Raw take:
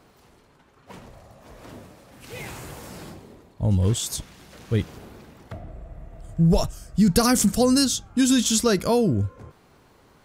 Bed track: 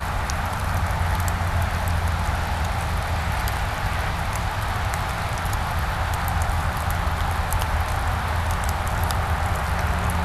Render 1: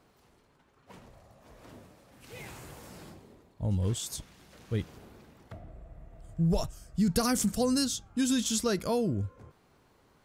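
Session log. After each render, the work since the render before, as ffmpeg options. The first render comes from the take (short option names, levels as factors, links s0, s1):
-af "volume=0.376"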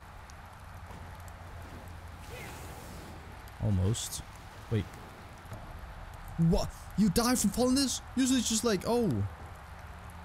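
-filter_complex "[1:a]volume=0.0668[s0];[0:a][s0]amix=inputs=2:normalize=0"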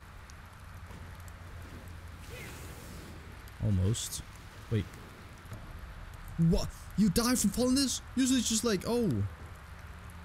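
-af "equalizer=f=770:t=o:w=0.61:g=-9.5"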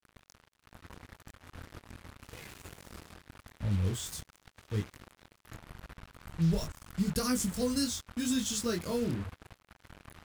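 -af "flanger=delay=19.5:depth=6:speed=0.83,acrusher=bits=6:mix=0:aa=0.5"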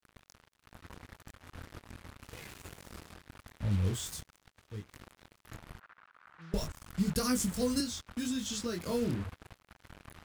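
-filter_complex "[0:a]asettb=1/sr,asplit=3[s0][s1][s2];[s0]atrim=end=5.794[s3];[s1]atrim=start=5.79:end=6.54,asetpts=PTS-STARTPTS,afade=t=in:d=0.004:c=qsin,afade=t=out:st=0.746:d=0.004:c=qsin,bandpass=f=1400:t=q:w=2.1[s4];[s2]atrim=start=6.536[s5];[s3][s4]acrossfade=d=0.004:c1=hsin:c2=qsin[s6];[s6][s5]acrossfade=d=0.004:c1=qsin:c2=hsin,asettb=1/sr,asplit=3[s7][s8][s9];[s7]atrim=end=7.804[s10];[s8]atrim=start=7.8:end=8.86,asetpts=PTS-STARTPTS,afade=t=in:d=0.004:c=qsin,afade=t=out:st=1.056:d=0.004:c=qsin,acrossover=split=160|6400[s11][s12][s13];[s11]acompressor=threshold=0.00398:ratio=4[s14];[s12]acompressor=threshold=0.0224:ratio=4[s15];[s13]acompressor=threshold=0.00355:ratio=4[s16];[s14][s15][s16]amix=inputs=3:normalize=0[s17];[s9]atrim=start=8.856[s18];[s10][s17]acrossfade=d=0.004:c1=hsin:c2=qsin[s19];[s19][s18]acrossfade=d=0.004:c1=qsin:c2=hsin,asplit=2[s20][s21];[s20]atrim=end=4.89,asetpts=PTS-STARTPTS,afade=t=out:st=4.03:d=0.86:silence=0.211349[s22];[s21]atrim=start=4.89,asetpts=PTS-STARTPTS,afade=t=in:d=0.004:c=hsin:silence=0.211349[s23];[s22][s23]concat=n=2:v=0:a=1"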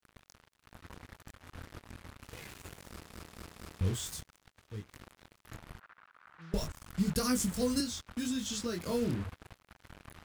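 -filter_complex "[0:a]asplit=5[s0][s1][s2][s3][s4];[s0]atrim=end=3.122[s5];[s1]atrim=start=2.888:end=3.122[s6];[s2]atrim=start=2.888:end=3.122[s7];[s3]atrim=start=2.888:end=3.122[s8];[s4]atrim=start=3.808[s9];[s5][s6]acrossfade=d=0.004:c1=hsin:c2=hsin[s10];[s10][s7]acrossfade=d=0.004:c1=hsin:c2=hsin[s11];[s11][s8]acrossfade=d=0.004:c1=hsin:c2=hsin[s12];[s12][s9]acrossfade=d=0.004:c1=hsin:c2=hsin"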